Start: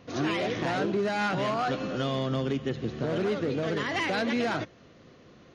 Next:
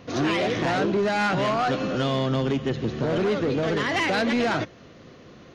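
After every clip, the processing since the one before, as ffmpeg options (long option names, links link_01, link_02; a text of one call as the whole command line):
ffmpeg -i in.wav -af "asoftclip=type=tanh:threshold=-23dB,volume=6.5dB" out.wav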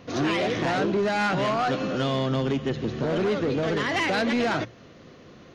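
ffmpeg -i in.wav -af "bandreject=frequency=60:width_type=h:width=6,bandreject=frequency=120:width_type=h:width=6,volume=-1dB" out.wav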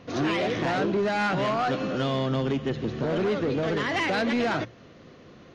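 ffmpeg -i in.wav -af "highshelf=frequency=7900:gain=-7.5,volume=-1dB" out.wav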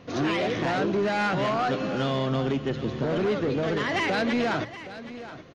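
ffmpeg -i in.wav -af "aecho=1:1:771:0.188" out.wav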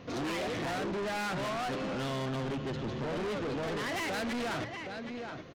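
ffmpeg -i in.wav -af "asoftclip=type=tanh:threshold=-32.5dB" out.wav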